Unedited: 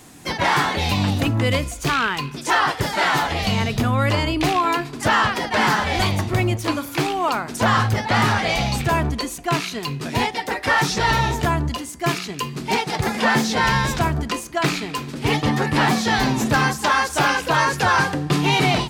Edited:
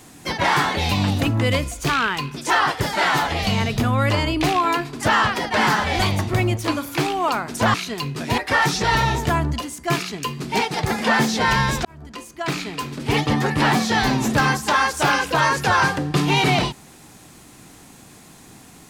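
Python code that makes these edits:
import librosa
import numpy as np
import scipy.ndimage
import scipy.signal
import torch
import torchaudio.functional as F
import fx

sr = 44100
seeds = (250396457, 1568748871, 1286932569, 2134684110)

y = fx.edit(x, sr, fx.cut(start_s=7.74, length_s=1.85),
    fx.cut(start_s=10.23, length_s=0.31),
    fx.fade_in_span(start_s=14.01, length_s=1.07), tone=tone)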